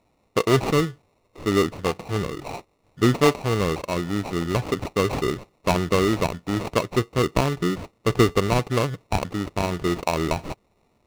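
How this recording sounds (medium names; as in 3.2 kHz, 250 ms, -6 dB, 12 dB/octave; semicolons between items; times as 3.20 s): aliases and images of a low sample rate 1.6 kHz, jitter 0%; IMA ADPCM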